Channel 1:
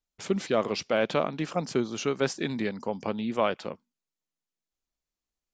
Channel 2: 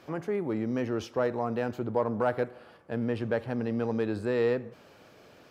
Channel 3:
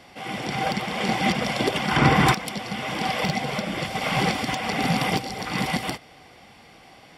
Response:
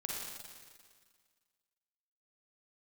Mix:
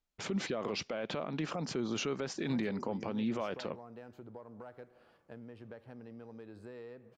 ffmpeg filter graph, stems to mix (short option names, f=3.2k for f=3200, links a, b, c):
-filter_complex "[0:a]alimiter=limit=-23dB:level=0:latency=1:release=113,volume=2.5dB[a];[1:a]acompressor=threshold=-33dB:ratio=12,adelay=2400,volume=-12dB[b];[a]highshelf=f=6k:g=-11.5,alimiter=level_in=2dB:limit=-24dB:level=0:latency=1:release=26,volume=-2dB,volume=0dB[c];[b][c]amix=inputs=2:normalize=0"